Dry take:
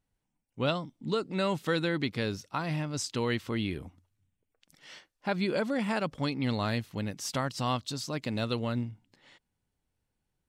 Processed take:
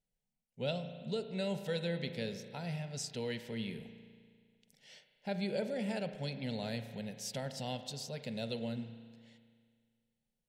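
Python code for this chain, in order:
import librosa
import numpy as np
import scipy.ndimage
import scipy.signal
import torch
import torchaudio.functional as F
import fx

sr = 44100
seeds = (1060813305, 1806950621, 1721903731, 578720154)

y = fx.fixed_phaser(x, sr, hz=310.0, stages=6)
y = fx.rev_spring(y, sr, rt60_s=2.0, pass_ms=(35,), chirp_ms=20, drr_db=8.5)
y = y * librosa.db_to_amplitude(-5.5)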